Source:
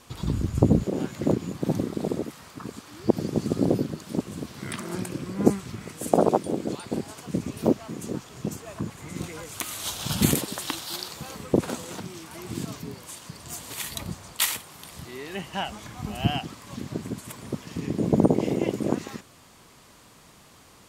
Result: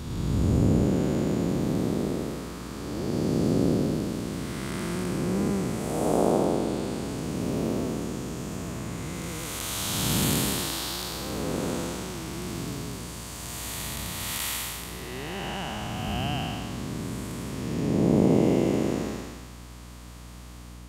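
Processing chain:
spectrum smeared in time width 449 ms
mains hum 60 Hz, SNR 16 dB
level +5 dB

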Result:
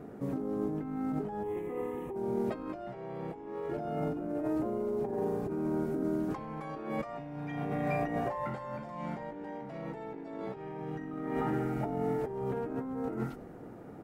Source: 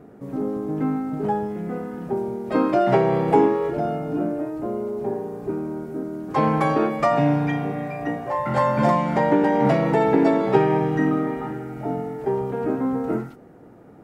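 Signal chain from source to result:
compressor whose output falls as the input rises −30 dBFS, ratio −1
0:01.43–0:02.16: phaser with its sweep stopped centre 980 Hz, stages 8
echo with shifted repeats 96 ms, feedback 65%, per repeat −94 Hz, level −23 dB
level −6.5 dB

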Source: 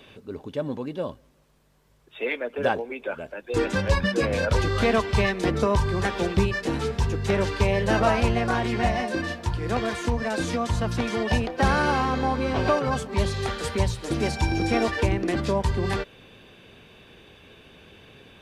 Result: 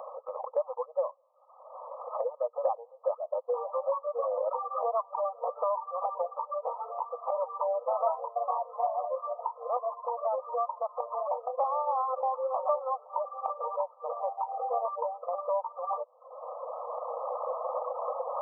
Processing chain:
loose part that buzzes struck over −30 dBFS, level −23 dBFS
camcorder AGC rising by 16 dB per second
reverb reduction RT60 0.76 s
linear-phase brick-wall band-pass 480–1,300 Hz
multiband upward and downward compressor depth 70%
level −1 dB

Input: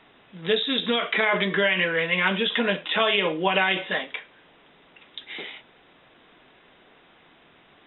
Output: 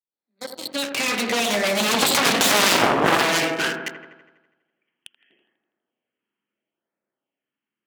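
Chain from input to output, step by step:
fade in at the beginning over 1.00 s
source passing by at 0:02.49, 55 m/s, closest 6.9 metres
parametric band 1,100 Hz −4.5 dB 1.2 octaves
convolution reverb RT60 0.90 s, pre-delay 7 ms, DRR 11 dB
leveller curve on the samples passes 5
auto-filter notch sine 0.75 Hz 570–3,100 Hz
downward compressor 6 to 1, threshold −19 dBFS, peak gain reduction 5.5 dB
delay with a low-pass on its return 82 ms, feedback 60%, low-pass 1,300 Hz, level −6 dB
harmonic generator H 3 −10 dB, 4 −15 dB, 7 −14 dB, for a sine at −9.5 dBFS
high-pass filter 190 Hz 12 dB per octave
level +7 dB

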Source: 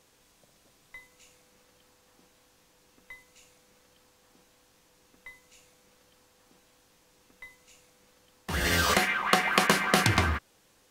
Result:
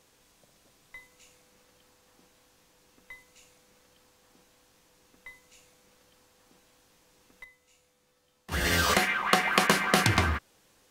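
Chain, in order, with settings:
0:07.44–0:08.52: tuned comb filter 72 Hz, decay 0.43 s, harmonics all, mix 80%

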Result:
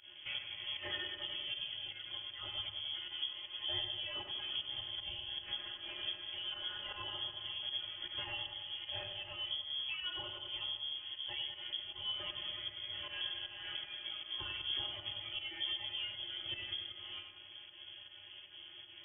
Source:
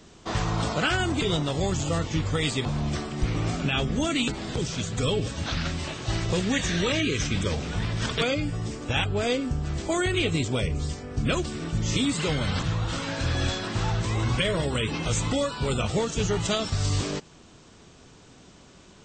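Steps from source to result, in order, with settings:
low-shelf EQ 140 Hz +10.5 dB
downward compressor, threshold −32 dBFS, peak gain reduction 20.5 dB
hum with harmonics 50 Hz, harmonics 37, −51 dBFS −4 dB per octave
stiff-string resonator 66 Hz, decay 0.38 s, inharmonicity 0.008
fake sidechain pumping 156 BPM, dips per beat 1, −15 dB, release 123 ms
feedback echo with a high-pass in the loop 96 ms, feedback 72%, high-pass 920 Hz, level −5.5 dB
on a send at −14 dB: convolution reverb, pre-delay 3 ms
on the sum: voice inversion scrambler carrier 3,300 Hz
level +1 dB

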